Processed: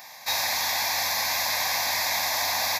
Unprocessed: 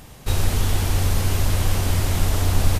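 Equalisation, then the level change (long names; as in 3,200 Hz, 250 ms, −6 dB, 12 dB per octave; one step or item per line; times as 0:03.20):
high-pass filter 910 Hz 12 dB per octave
phaser with its sweep stopped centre 2,000 Hz, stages 8
+9.0 dB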